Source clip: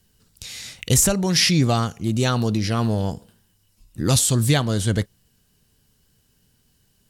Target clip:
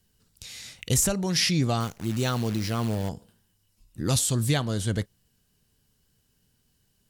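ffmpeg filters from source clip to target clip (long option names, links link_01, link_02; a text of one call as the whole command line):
ffmpeg -i in.wav -filter_complex "[0:a]asettb=1/sr,asplit=3[link_01][link_02][link_03];[link_01]atrim=end=1.804[link_04];[link_02]atrim=start=1.8:end=3.09,asetpts=PTS-STARTPTS,afade=type=in:duration=0.004:curve=qsin,afade=type=out:start_time=1.286:duration=0.004:curve=qsin,acrusher=bits=6:dc=4:mix=0:aa=0.000001[link_05];[link_03]atrim=start=3.086[link_06];[link_04][link_05]acrossfade=duration=0.004:curve1=hsin:curve2=qsin[link_07];[link_07][link_06]acrossfade=duration=0.004:curve1=qsin:curve2=hsin,volume=-6dB" out.wav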